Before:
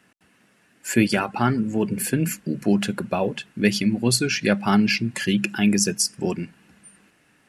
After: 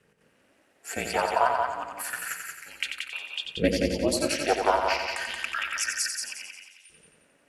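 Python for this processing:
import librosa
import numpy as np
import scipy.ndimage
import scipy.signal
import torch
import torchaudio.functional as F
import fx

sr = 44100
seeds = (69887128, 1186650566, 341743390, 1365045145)

y = fx.filter_lfo_highpass(x, sr, shape='saw_up', hz=0.29, low_hz=300.0, high_hz=3500.0, q=4.9)
y = fx.echo_heads(y, sr, ms=89, heads='first and second', feedback_pct=47, wet_db=-6.0)
y = y * np.sin(2.0 * np.pi * 140.0 * np.arange(len(y)) / sr)
y = y * 10.0 ** (-5.5 / 20.0)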